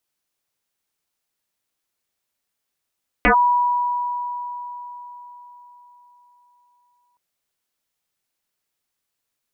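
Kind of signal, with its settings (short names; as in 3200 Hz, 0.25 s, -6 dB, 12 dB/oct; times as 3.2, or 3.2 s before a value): FM tone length 3.92 s, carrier 975 Hz, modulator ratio 0.26, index 6.4, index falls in 0.10 s linear, decay 4.41 s, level -10.5 dB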